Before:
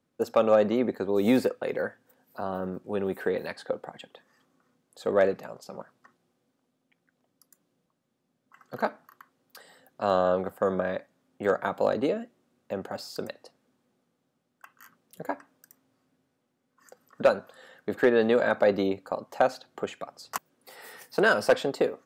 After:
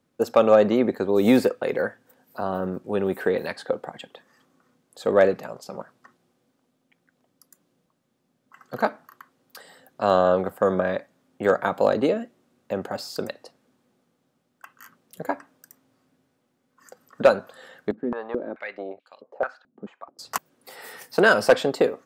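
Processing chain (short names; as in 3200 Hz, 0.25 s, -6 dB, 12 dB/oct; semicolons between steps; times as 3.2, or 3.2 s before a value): 17.91–20.19 stepped band-pass 4.6 Hz 220–3100 Hz; gain +5 dB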